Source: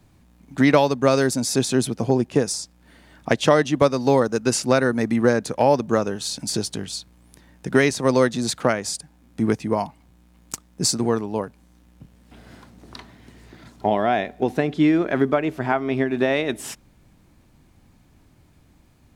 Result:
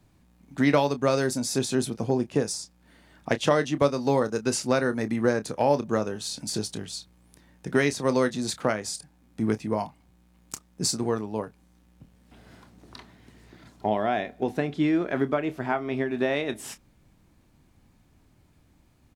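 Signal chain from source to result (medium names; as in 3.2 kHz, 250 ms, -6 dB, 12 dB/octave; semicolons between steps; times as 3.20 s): doubling 28 ms -12 dB; trim -5.5 dB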